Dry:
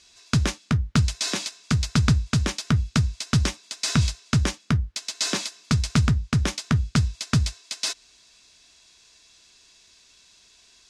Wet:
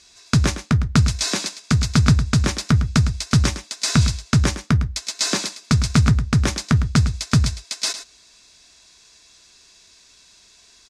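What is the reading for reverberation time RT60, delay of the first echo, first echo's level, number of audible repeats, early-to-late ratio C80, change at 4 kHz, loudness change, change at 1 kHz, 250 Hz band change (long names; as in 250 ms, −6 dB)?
no reverb audible, 107 ms, −11.5 dB, 1, no reverb audible, +3.5 dB, +4.5 dB, +4.5 dB, +5.0 dB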